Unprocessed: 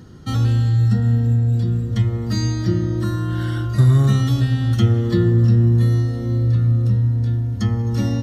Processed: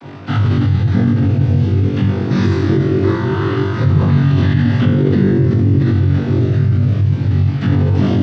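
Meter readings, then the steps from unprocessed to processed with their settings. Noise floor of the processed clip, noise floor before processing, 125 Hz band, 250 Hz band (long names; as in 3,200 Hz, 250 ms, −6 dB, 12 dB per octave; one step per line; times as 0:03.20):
−20 dBFS, −25 dBFS, +2.5 dB, +7.0 dB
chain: linear delta modulator 32 kbit/s, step −34 dBFS
cochlear-implant simulation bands 16
on a send: flutter between parallel walls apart 3.6 metres, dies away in 0.68 s
on the sum: pitch vibrato 0.63 Hz 24 cents
low-pass filter 2,900 Hz 12 dB per octave
in parallel at −1 dB: compressor whose output falls as the input rises −17 dBFS, ratio −0.5
on the sum: level −1.5 dB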